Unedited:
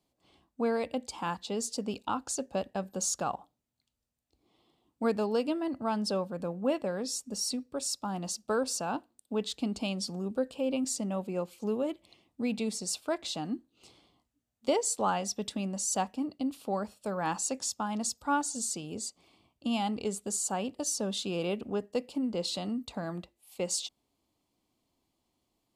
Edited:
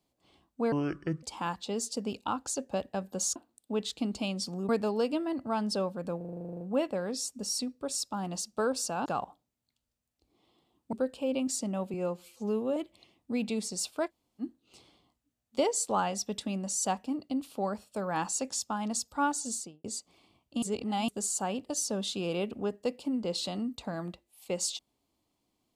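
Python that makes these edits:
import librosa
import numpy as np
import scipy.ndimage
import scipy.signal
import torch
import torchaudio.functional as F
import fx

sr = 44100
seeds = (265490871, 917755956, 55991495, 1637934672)

y = fx.studio_fade_out(x, sr, start_s=18.6, length_s=0.34)
y = fx.edit(y, sr, fx.speed_span(start_s=0.72, length_s=0.32, speed=0.63),
    fx.swap(start_s=3.17, length_s=1.87, other_s=8.97, other_length_s=1.33),
    fx.stutter(start_s=6.52, slice_s=0.04, count=12),
    fx.stretch_span(start_s=11.31, length_s=0.55, factor=1.5),
    fx.room_tone_fill(start_s=13.18, length_s=0.33, crossfade_s=0.06),
    fx.reverse_span(start_s=19.72, length_s=0.46), tone=tone)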